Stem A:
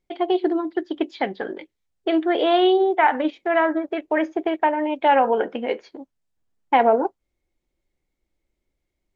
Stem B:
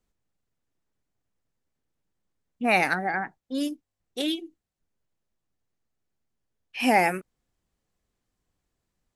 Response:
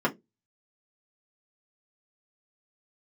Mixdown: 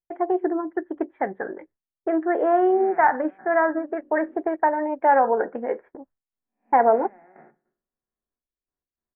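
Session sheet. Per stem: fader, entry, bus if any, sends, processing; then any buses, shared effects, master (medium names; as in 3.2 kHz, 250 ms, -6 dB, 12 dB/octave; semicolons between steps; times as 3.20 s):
0.0 dB, 0.00 s, no send, gate with hold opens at -37 dBFS
-14.0 dB, 0.15 s, send -12 dB, spectral blur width 363 ms; trance gate "xx..x.xxx" 102 bpm -12 dB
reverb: on, RT60 0.20 s, pre-delay 3 ms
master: elliptic low-pass 1.8 kHz, stop band 60 dB; peaking EQ 260 Hz -3.5 dB 1.1 oct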